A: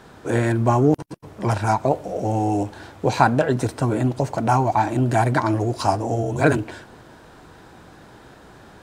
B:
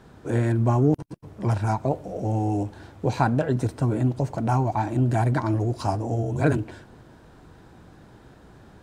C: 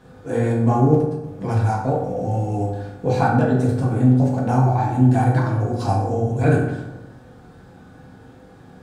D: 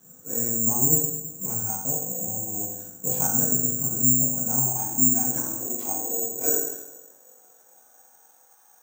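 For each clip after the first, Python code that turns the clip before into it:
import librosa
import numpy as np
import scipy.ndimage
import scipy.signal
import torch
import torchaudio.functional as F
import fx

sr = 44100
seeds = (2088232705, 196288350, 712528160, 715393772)

y1 = fx.low_shelf(x, sr, hz=320.0, db=9.5)
y1 = y1 * librosa.db_to_amplitude(-8.5)
y2 = fx.rev_fdn(y1, sr, rt60_s=0.98, lf_ratio=1.2, hf_ratio=0.55, size_ms=12.0, drr_db=-5.0)
y2 = y2 * librosa.db_to_amplitude(-2.5)
y3 = fx.filter_sweep_highpass(y2, sr, from_hz=170.0, to_hz=880.0, start_s=4.6, end_s=8.55, q=2.2)
y3 = (np.kron(y3[::6], np.eye(6)[0]) * 6)[:len(y3)]
y3 = y3 * librosa.db_to_amplitude(-15.5)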